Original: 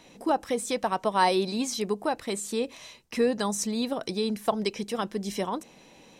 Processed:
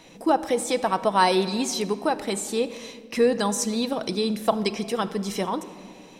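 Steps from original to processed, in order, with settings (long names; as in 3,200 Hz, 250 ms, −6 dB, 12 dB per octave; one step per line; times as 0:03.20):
rectangular room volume 3,100 cubic metres, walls mixed, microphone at 0.65 metres
level +3.5 dB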